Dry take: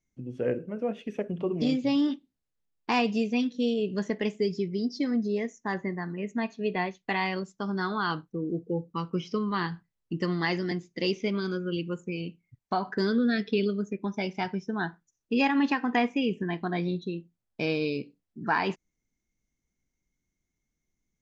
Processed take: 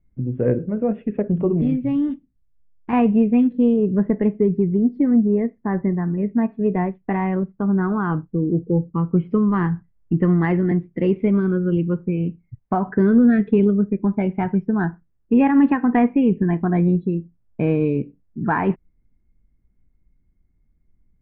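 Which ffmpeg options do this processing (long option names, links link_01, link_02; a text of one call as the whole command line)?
ffmpeg -i in.wav -filter_complex "[0:a]asettb=1/sr,asplit=3[link_01][link_02][link_03];[link_01]atrim=end=1.614[link_04];[link_02]atrim=start=1.61:end=2.93,asetpts=PTS-STARTPTS,afade=type=in:duration=0.004:curve=qsin,afade=type=out:start_time=1.316:duration=0.004:curve=qsin,equalizer=frequency=610:width=0.39:gain=-9[link_05];[link_03]atrim=start=2.926[link_06];[link_04][link_05]acrossfade=duration=0.004:curve1=hsin:curve2=qsin[link_07];[link_07][link_06]acrossfade=duration=0.004:curve1=qsin:curve2=hsin,asettb=1/sr,asplit=3[link_08][link_09][link_10];[link_08]atrim=end=3.764[link_11];[link_09]atrim=start=3.76:end=9.31,asetpts=PTS-STARTPTS,afade=type=in:duration=0.004:curve=qsin,afade=type=out:start_time=5.546:duration=0.004:curve=qsin,lowpass=frequency=1600:poles=1[link_12];[link_10]atrim=start=9.306[link_13];[link_11][link_12]acrossfade=duration=0.004:curve1=hsin:curve2=qsin[link_14];[link_14][link_13]acrossfade=duration=0.004:curve1=qsin:curve2=hsin,lowpass=frequency=2200:width=0.5412,lowpass=frequency=2200:width=1.3066,aemphasis=mode=reproduction:type=riaa,acontrast=21" out.wav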